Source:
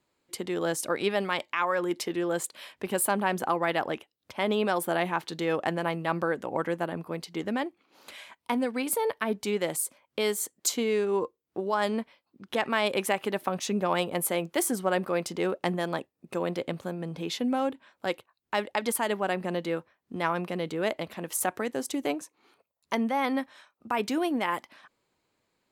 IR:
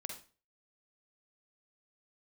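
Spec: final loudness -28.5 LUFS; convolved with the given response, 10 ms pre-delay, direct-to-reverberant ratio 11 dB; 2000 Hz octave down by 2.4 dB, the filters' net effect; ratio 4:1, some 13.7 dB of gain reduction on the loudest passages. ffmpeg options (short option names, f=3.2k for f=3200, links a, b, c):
-filter_complex "[0:a]equalizer=f=2k:t=o:g=-3,acompressor=threshold=-40dB:ratio=4,asplit=2[a][b];[1:a]atrim=start_sample=2205,adelay=10[c];[b][c]afir=irnorm=-1:irlink=0,volume=-9dB[d];[a][d]amix=inputs=2:normalize=0,volume=13.5dB"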